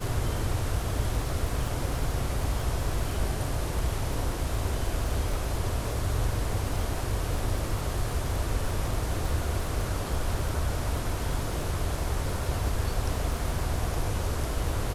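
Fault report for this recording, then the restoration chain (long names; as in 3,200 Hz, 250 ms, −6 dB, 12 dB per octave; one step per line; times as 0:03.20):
surface crackle 46 per second −33 dBFS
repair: click removal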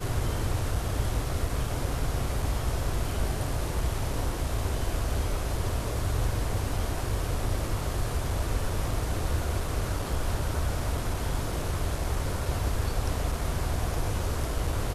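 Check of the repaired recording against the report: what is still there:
none of them is left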